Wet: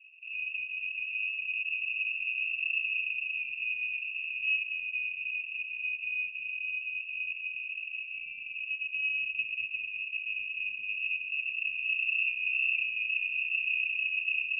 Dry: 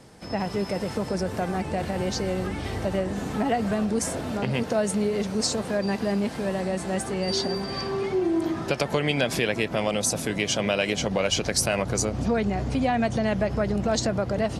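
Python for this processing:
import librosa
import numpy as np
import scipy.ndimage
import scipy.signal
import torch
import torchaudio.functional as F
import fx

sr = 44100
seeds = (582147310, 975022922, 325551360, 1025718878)

y = fx.rattle_buzz(x, sr, strikes_db=-30.0, level_db=-15.0)
y = scipy.signal.sosfilt(scipy.signal.cheby2(4, 80, [650.0, 1700.0], 'bandstop', fs=sr, output='sos'), y)
y = fx.echo_feedback(y, sr, ms=229, feedback_pct=30, wet_db=-9.0)
y = fx.freq_invert(y, sr, carrier_hz=2700)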